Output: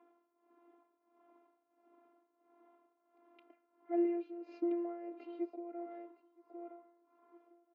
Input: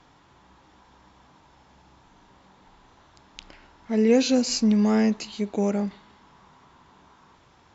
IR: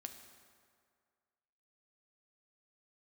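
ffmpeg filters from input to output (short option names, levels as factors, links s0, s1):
-filter_complex "[0:a]asettb=1/sr,asplit=3[s0][s1][s2];[s0]atrim=end=4.044[s3];[s1]atrim=start=4.04:end=4.49,asetpts=PTS-STARTPTS,afade=t=in:d=0.004:c=qsin,afade=t=out:st=0.446:d=0.004:c=qsin,acompressor=threshold=0.1:ratio=2.5[s4];[s2]atrim=start=4.486[s5];[s3][s4]acrossfade=d=0.004:c1=hsin:c2=qsin[s6];[s6][s5]acrossfade=d=0.004:c1=qsin:c2=hsin,afftfilt=real='hypot(re,im)*cos(PI*b)':imag='0':win_size=512:overlap=0.75,highpass=f=230:w=0.5412,highpass=f=230:w=1.3066,equalizer=f=310:t=q:w=4:g=7,equalizer=f=480:t=q:w=4:g=9,equalizer=f=690:t=q:w=4:g=4,equalizer=f=1000:t=q:w=4:g=-3,equalizer=f=1700:t=q:w=4:g=-8,lowpass=f=2000:w=0.5412,lowpass=f=2000:w=1.3066,aecho=1:1:965|1930|2895:0.178|0.0445|0.0111,tremolo=f=1.5:d=0.83,volume=0.422"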